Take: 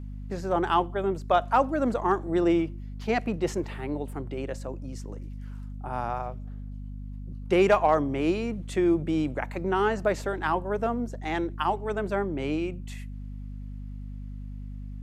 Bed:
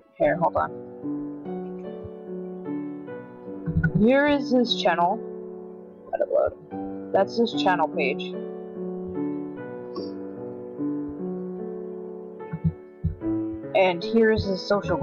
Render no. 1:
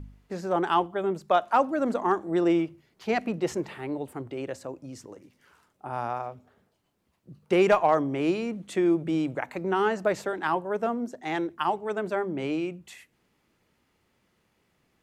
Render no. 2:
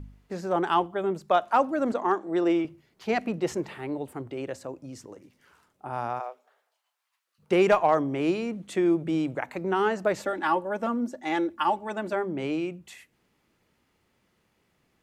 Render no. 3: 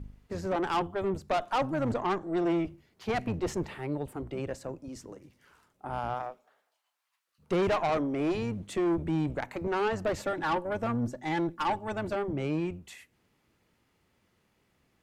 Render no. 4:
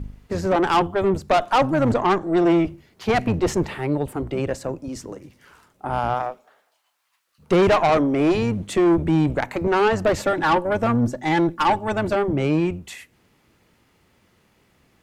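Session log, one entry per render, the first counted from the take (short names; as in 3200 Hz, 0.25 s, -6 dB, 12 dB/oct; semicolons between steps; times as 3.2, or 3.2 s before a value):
de-hum 50 Hz, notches 5
1.92–2.65 BPF 230–7500 Hz; 6.19–7.38 HPF 380 Hz -> 1300 Hz 24 dB/oct; 10.2–12.13 comb 3.5 ms
octaver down 1 oct, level -4 dB; tube stage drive 23 dB, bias 0.4
gain +10.5 dB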